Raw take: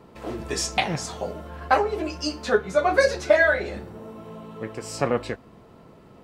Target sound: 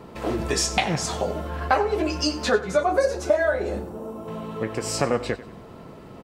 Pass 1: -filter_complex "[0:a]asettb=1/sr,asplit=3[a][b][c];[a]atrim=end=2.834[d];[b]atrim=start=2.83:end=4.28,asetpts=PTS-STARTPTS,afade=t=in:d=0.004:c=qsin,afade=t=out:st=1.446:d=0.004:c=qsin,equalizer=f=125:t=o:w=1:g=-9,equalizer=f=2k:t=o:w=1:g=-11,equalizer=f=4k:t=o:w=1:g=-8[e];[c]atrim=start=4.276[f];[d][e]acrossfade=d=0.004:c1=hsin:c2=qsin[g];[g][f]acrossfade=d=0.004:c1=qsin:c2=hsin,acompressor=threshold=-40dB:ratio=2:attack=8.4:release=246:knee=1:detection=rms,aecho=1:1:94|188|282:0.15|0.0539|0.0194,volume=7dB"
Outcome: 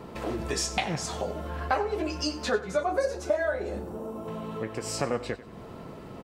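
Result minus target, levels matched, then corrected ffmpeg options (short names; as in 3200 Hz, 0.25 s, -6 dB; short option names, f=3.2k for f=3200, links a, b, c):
compressor: peak gain reduction +6 dB
-filter_complex "[0:a]asettb=1/sr,asplit=3[a][b][c];[a]atrim=end=2.834[d];[b]atrim=start=2.83:end=4.28,asetpts=PTS-STARTPTS,afade=t=in:d=0.004:c=qsin,afade=t=out:st=1.446:d=0.004:c=qsin,equalizer=f=125:t=o:w=1:g=-9,equalizer=f=2k:t=o:w=1:g=-11,equalizer=f=4k:t=o:w=1:g=-8[e];[c]atrim=start=4.276[f];[d][e]acrossfade=d=0.004:c1=hsin:c2=qsin[g];[g][f]acrossfade=d=0.004:c1=qsin:c2=hsin,acompressor=threshold=-28dB:ratio=2:attack=8.4:release=246:knee=1:detection=rms,aecho=1:1:94|188|282:0.15|0.0539|0.0194,volume=7dB"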